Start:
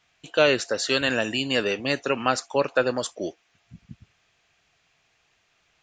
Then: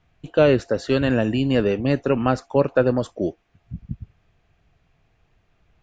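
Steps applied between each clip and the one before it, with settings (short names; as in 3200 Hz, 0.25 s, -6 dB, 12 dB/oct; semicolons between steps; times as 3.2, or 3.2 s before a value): tilt -4.5 dB/oct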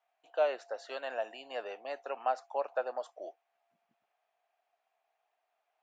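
ladder high-pass 650 Hz, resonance 65%; gain -4.5 dB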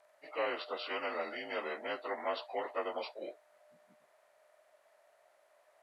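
inharmonic rescaling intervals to 87%; spectral compressor 2:1; gain -3.5 dB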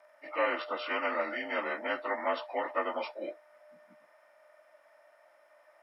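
reverb RT60 0.10 s, pre-delay 3 ms, DRR 7 dB; gain -1 dB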